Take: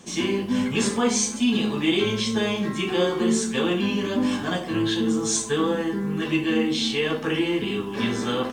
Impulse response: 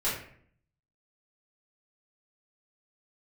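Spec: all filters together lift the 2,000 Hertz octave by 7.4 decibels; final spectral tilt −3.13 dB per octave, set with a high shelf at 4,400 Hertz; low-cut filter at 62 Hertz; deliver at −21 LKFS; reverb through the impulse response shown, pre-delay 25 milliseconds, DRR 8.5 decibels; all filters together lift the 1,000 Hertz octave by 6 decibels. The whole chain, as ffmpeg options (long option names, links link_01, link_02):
-filter_complex "[0:a]highpass=62,equalizer=frequency=1000:width_type=o:gain=5,equalizer=frequency=2000:width_type=o:gain=7.5,highshelf=frequency=4400:gain=3.5,asplit=2[link_01][link_02];[1:a]atrim=start_sample=2205,adelay=25[link_03];[link_02][link_03]afir=irnorm=-1:irlink=0,volume=-17dB[link_04];[link_01][link_04]amix=inputs=2:normalize=0,volume=-0.5dB"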